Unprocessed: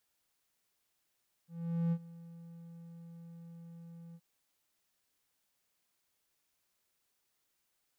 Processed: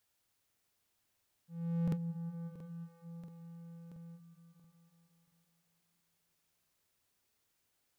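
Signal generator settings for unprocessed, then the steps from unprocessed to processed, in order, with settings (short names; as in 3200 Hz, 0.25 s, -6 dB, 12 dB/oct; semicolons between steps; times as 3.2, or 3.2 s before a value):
ADSR triangle 168 Hz, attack 0.441 s, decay 59 ms, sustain -20.5 dB, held 2.67 s, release 51 ms -25.5 dBFS
bell 97 Hz +7 dB 0.56 oct; repeats that get brighter 0.182 s, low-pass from 400 Hz, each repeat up 1 oct, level -3 dB; crackling interface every 0.68 s, samples 2048, repeat, from 0.47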